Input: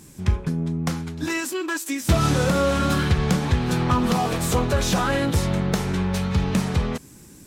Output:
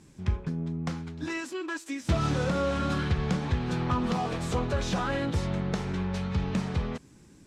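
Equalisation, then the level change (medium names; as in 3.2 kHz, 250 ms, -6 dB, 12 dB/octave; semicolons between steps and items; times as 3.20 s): distance through air 77 m; -7.0 dB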